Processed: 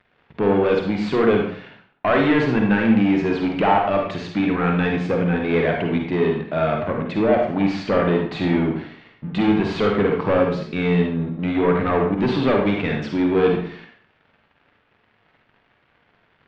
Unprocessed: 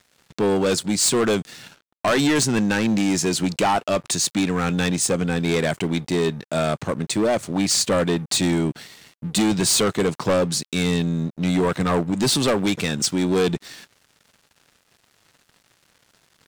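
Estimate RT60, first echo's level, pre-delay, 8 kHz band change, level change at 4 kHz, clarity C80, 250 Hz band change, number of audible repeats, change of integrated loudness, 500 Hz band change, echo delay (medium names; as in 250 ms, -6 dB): 0.55 s, no echo, 39 ms, under -30 dB, -9.5 dB, 7.0 dB, +2.0 dB, no echo, +1.0 dB, +3.0 dB, no echo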